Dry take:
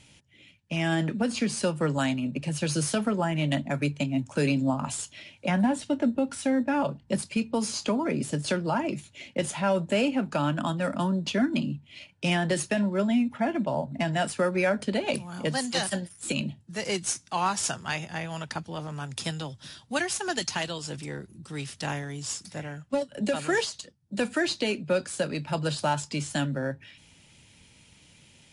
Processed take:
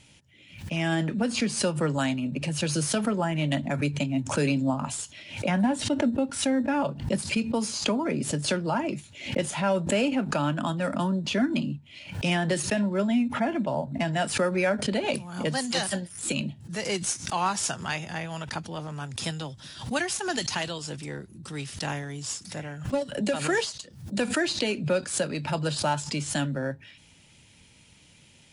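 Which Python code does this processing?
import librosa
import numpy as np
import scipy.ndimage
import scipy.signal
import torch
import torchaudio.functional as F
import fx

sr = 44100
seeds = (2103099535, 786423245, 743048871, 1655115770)

y = fx.pre_swell(x, sr, db_per_s=100.0)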